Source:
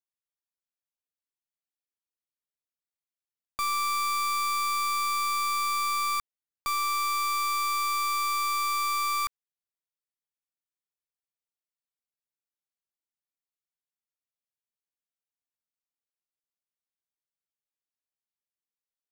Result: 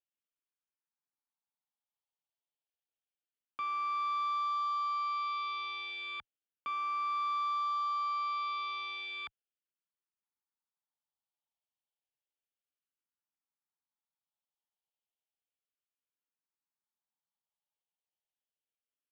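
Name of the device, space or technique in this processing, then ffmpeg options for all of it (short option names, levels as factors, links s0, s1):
barber-pole phaser into a guitar amplifier: -filter_complex "[0:a]asplit=2[s0][s1];[s1]afreqshift=-0.32[s2];[s0][s2]amix=inputs=2:normalize=1,asoftclip=type=tanh:threshold=0.0282,highpass=110,equalizer=f=110:t=q:w=4:g=-7,equalizer=f=370:t=q:w=4:g=-4,equalizer=f=860:t=q:w=4:g=8,equalizer=f=2000:t=q:w=4:g=-9,equalizer=f=3100:t=q:w=4:g=5,lowpass=f=3500:w=0.5412,lowpass=f=3500:w=1.3066"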